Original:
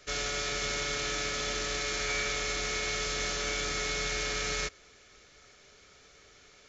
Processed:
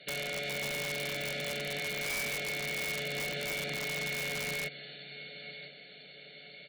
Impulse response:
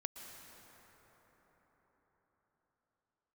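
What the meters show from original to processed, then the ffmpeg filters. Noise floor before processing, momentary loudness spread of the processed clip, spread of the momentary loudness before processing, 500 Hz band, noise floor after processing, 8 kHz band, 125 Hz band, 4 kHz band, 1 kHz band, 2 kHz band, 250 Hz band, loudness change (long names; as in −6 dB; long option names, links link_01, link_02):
−58 dBFS, 15 LU, 1 LU, −2.0 dB, −52 dBFS, can't be measured, −0.5 dB, −4.0 dB, −7.0 dB, −1.0 dB, −1.0 dB, −3.5 dB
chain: -filter_complex "[0:a]aecho=1:1:1.4:0.55,aecho=1:1:999|1998|2997:0.112|0.0494|0.0217,asplit=2[link_01][link_02];[1:a]atrim=start_sample=2205,highshelf=frequency=3800:gain=6.5[link_03];[link_02][link_03]afir=irnorm=-1:irlink=0,volume=-10.5dB[link_04];[link_01][link_04]amix=inputs=2:normalize=0,acrossover=split=2800[link_05][link_06];[link_06]acompressor=threshold=-41dB:ratio=4:attack=1:release=60[link_07];[link_05][link_07]amix=inputs=2:normalize=0,afftfilt=real='re*between(b*sr/4096,130,4500)':imag='im*between(b*sr/4096,130,4500)':win_size=4096:overlap=0.75,volume=29.5dB,asoftclip=hard,volume=-29.5dB,acompressor=threshold=-40dB:ratio=1.5,asuperstop=centerf=1100:order=4:qfactor=0.94,aeval=exprs='(mod(35.5*val(0)+1,2)-1)/35.5':channel_layout=same,volume=3.5dB"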